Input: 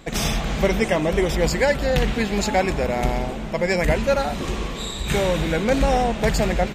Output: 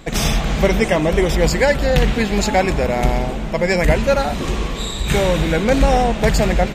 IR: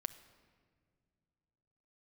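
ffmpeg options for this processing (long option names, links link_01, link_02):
-filter_complex "[0:a]asplit=2[link_01][link_02];[1:a]atrim=start_sample=2205,lowshelf=frequency=130:gain=11.5[link_03];[link_02][link_03]afir=irnorm=-1:irlink=0,volume=-10.5dB[link_04];[link_01][link_04]amix=inputs=2:normalize=0,volume=2dB"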